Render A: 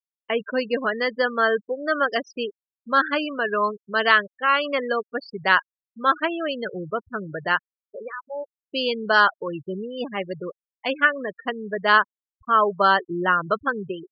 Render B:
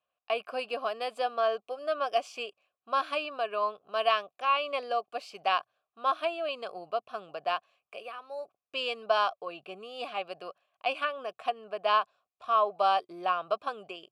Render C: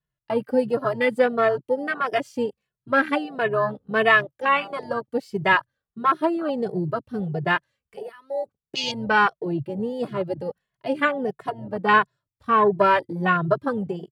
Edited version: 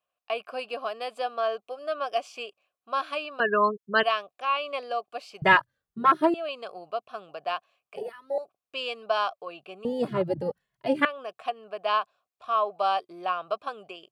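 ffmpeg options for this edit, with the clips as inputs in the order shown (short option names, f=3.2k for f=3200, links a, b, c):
-filter_complex "[2:a]asplit=3[a][b][c];[1:a]asplit=5[d][e][f][g][h];[d]atrim=end=3.402[i];[0:a]atrim=start=3.398:end=4.032[j];[e]atrim=start=4.028:end=5.422[k];[a]atrim=start=5.418:end=6.342[l];[f]atrim=start=6.338:end=7.962[m];[b]atrim=start=7.958:end=8.382[n];[g]atrim=start=8.378:end=9.852[o];[c]atrim=start=9.848:end=11.052[p];[h]atrim=start=11.048[q];[i][j]acrossfade=d=0.004:c1=hsin:c2=hsin[r];[r][k]acrossfade=d=0.004:c1=hsin:c2=hsin[s];[s][l]acrossfade=d=0.004:c1=hsin:c2=hsin[t];[t][m]acrossfade=d=0.004:c1=hsin:c2=hsin[u];[u][n]acrossfade=d=0.004:c1=hsin:c2=hsin[v];[v][o]acrossfade=d=0.004:c1=hsin:c2=hsin[w];[w][p]acrossfade=d=0.004:c1=hsin:c2=hsin[x];[x][q]acrossfade=d=0.004:c1=hsin:c2=hsin"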